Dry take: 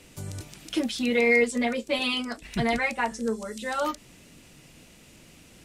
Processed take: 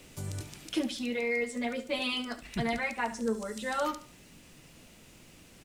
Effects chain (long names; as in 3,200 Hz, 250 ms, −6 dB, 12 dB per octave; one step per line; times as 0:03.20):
speech leveller within 5 dB 0.5 s
background noise pink −57 dBFS
on a send: repeating echo 70 ms, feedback 33%, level −13.5 dB
on the sum: level −6.5 dB